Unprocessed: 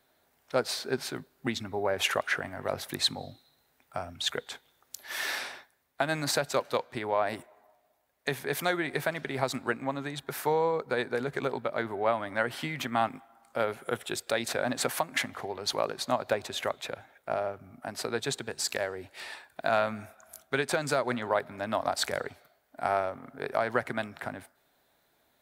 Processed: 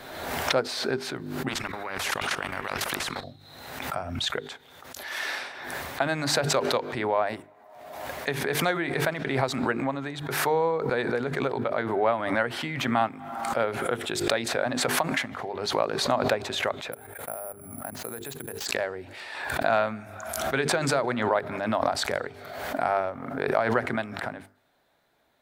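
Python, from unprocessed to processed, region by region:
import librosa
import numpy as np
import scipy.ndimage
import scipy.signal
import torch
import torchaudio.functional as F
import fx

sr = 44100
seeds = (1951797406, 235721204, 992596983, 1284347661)

y = fx.chain(x, sr, fx.peak_eq(hz=1400.0, db=14.5, octaves=0.98),
    fx.level_steps(step_db=18),
    fx.spectral_comp(ratio=4.0), at=(1.48, 3.24))
y = fx.chain(y, sr, fx.lowpass(hz=2400.0, slope=6),
    fx.level_steps(step_db=20),
    fx.resample_bad(factor=4, down='none', up='zero_stuff'), at=(16.92, 18.66))
y = fx.lowpass(y, sr, hz=3900.0, slope=6)
y = fx.hum_notches(y, sr, base_hz=50, count=9)
y = fx.pre_swell(y, sr, db_per_s=43.0)
y = F.gain(torch.from_numpy(y), 2.5).numpy()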